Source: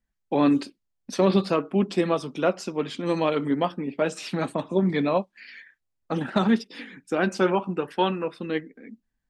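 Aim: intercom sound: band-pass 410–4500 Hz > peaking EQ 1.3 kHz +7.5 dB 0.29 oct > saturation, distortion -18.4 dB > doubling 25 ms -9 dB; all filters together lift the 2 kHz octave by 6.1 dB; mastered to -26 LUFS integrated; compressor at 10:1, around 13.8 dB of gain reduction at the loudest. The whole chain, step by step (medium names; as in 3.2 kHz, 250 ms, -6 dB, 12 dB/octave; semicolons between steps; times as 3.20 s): peaking EQ 2 kHz +6.5 dB; compression 10:1, threshold -30 dBFS; band-pass 410–4500 Hz; peaking EQ 1.3 kHz +7.5 dB 0.29 oct; saturation -25 dBFS; doubling 25 ms -9 dB; trim +12 dB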